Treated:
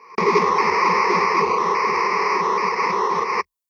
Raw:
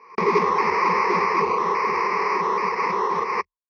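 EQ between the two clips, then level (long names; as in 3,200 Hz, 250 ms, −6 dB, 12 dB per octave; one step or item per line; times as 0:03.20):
high-shelf EQ 5,500 Hz +11 dB
notch filter 1,600 Hz, Q 22
+2.0 dB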